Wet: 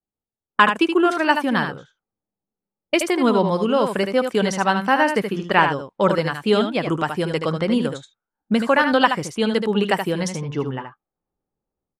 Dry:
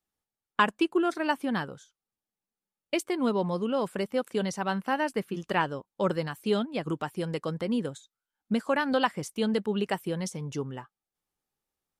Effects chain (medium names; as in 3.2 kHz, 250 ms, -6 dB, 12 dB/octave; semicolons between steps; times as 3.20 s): level rider gain up to 9 dB; peaking EQ 1.7 kHz +4 dB 2.5 oct; level-controlled noise filter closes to 560 Hz, open at -17.5 dBFS; on a send: delay 76 ms -7 dB; on the sum: trim -1 dB